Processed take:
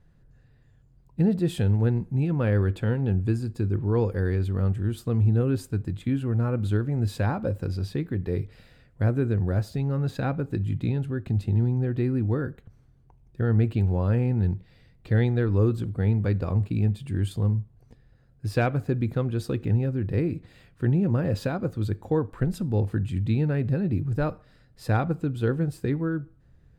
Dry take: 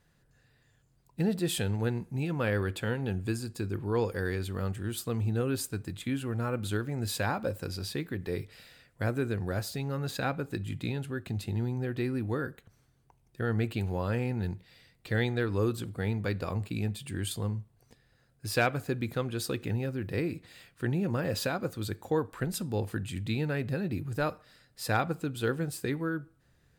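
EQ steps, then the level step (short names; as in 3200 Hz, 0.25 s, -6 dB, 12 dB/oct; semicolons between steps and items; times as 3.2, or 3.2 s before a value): tilt -3 dB/oct; 0.0 dB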